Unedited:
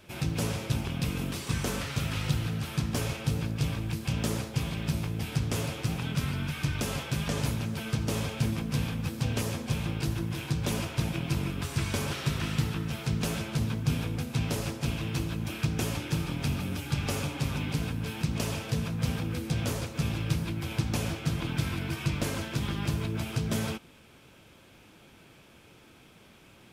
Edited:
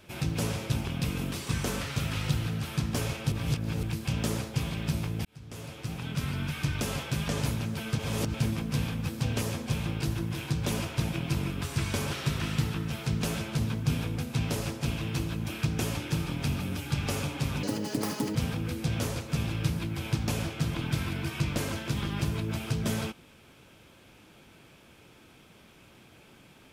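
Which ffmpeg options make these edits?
-filter_complex "[0:a]asplit=8[s0][s1][s2][s3][s4][s5][s6][s7];[s0]atrim=end=3.322[s8];[s1]atrim=start=3.318:end=3.832,asetpts=PTS-STARTPTS,areverse[s9];[s2]atrim=start=3.828:end=5.25,asetpts=PTS-STARTPTS,afade=t=out:st=1.418:d=0.004:c=hsin[s10];[s3]atrim=start=5.25:end=7.992,asetpts=PTS-STARTPTS,afade=t=in:d=1.17[s11];[s4]atrim=start=7.988:end=8.342,asetpts=PTS-STARTPTS,areverse[s12];[s5]atrim=start=8.338:end=17.634[s13];[s6]atrim=start=17.63:end=19.01,asetpts=PTS-STARTPTS,asetrate=84231,aresample=44100[s14];[s7]atrim=start=19.006[s15];[s8][s9]acrossfade=d=0.004:c1=hsin:c2=hsin[s16];[s10][s11]concat=n=2:v=0:a=1[s17];[s16][s17]acrossfade=d=0.004:c1=hsin:c2=hsin[s18];[s18][s12]acrossfade=d=0.004:c1=hsin:c2=hsin[s19];[s19][s13]acrossfade=d=0.004:c1=hsin:c2=hsin[s20];[s20][s14]acrossfade=d=0.004:c1=hsin:c2=hsin[s21];[s21][s15]acrossfade=d=0.004:c1=hsin:c2=hsin"

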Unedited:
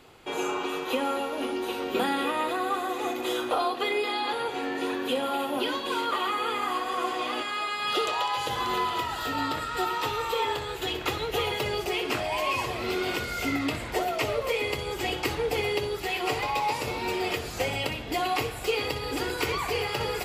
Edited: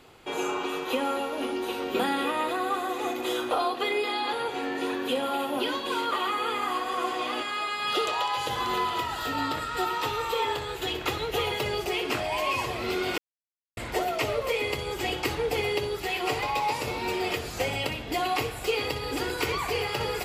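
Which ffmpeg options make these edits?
-filter_complex "[0:a]asplit=3[s0][s1][s2];[s0]atrim=end=13.18,asetpts=PTS-STARTPTS,afade=t=out:st=13.176:d=0.004:c=hsin[s3];[s1]atrim=start=13.18:end=13.77,asetpts=PTS-STARTPTS,volume=0[s4];[s2]atrim=start=13.77,asetpts=PTS-STARTPTS,afade=t=in:d=0.004:c=hsin[s5];[s3][s4][s5]concat=n=3:v=0:a=1"

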